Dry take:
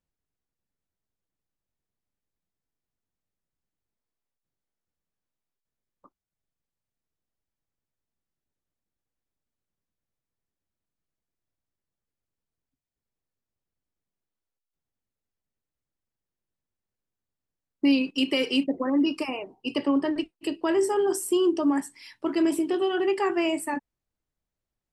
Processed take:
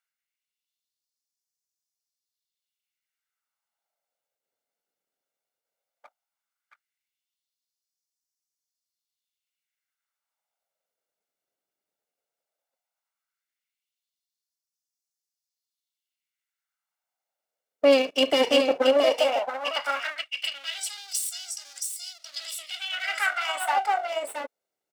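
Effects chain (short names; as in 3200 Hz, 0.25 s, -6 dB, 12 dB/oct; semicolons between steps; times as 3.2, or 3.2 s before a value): minimum comb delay 1.4 ms; echo 0.673 s -5 dB; LFO high-pass sine 0.15 Hz 360–5600 Hz; gain +3.5 dB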